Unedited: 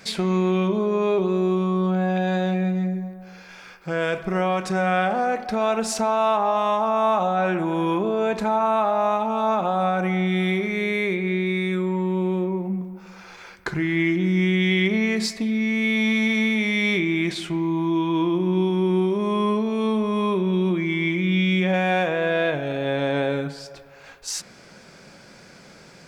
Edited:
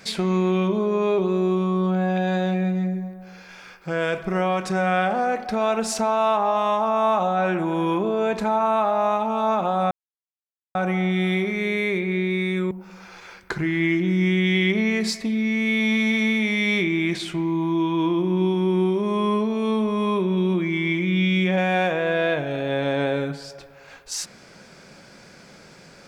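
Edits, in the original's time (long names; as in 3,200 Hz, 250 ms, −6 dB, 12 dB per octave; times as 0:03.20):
0:09.91: splice in silence 0.84 s
0:11.87–0:12.87: remove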